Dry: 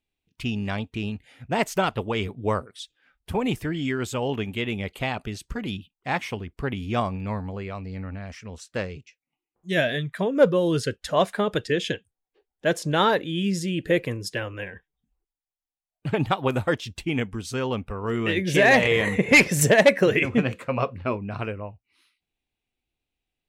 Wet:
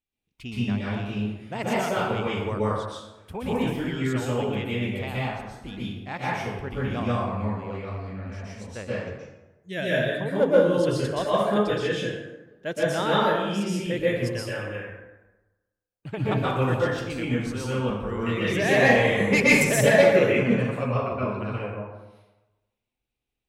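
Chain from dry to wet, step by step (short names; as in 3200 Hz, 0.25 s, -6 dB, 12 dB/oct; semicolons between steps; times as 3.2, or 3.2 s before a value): 5.24–5.65 compressor, threshold -41 dBFS, peak gain reduction 13.5 dB; plate-style reverb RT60 1.1 s, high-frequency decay 0.55×, pre-delay 0.11 s, DRR -7.5 dB; gain -9 dB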